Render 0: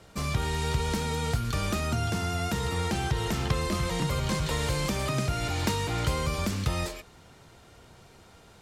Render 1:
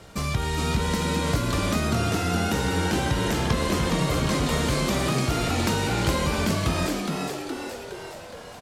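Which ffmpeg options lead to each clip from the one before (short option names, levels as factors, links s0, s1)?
-filter_complex "[0:a]asplit=2[s0][s1];[s1]acompressor=threshold=0.0158:ratio=6,volume=1.06[s2];[s0][s2]amix=inputs=2:normalize=0,asplit=9[s3][s4][s5][s6][s7][s8][s9][s10][s11];[s4]adelay=416,afreqshift=100,volume=0.631[s12];[s5]adelay=832,afreqshift=200,volume=0.367[s13];[s6]adelay=1248,afreqshift=300,volume=0.211[s14];[s7]adelay=1664,afreqshift=400,volume=0.123[s15];[s8]adelay=2080,afreqshift=500,volume=0.0716[s16];[s9]adelay=2496,afreqshift=600,volume=0.0412[s17];[s10]adelay=2912,afreqshift=700,volume=0.024[s18];[s11]adelay=3328,afreqshift=800,volume=0.014[s19];[s3][s12][s13][s14][s15][s16][s17][s18][s19]amix=inputs=9:normalize=0"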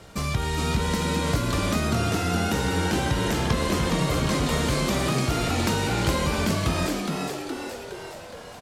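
-af anull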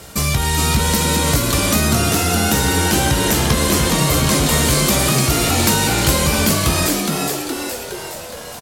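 -filter_complex "[0:a]aemphasis=mode=production:type=50fm,acontrast=86,asplit=2[s0][s1];[s1]adelay=14,volume=0.299[s2];[s0][s2]amix=inputs=2:normalize=0"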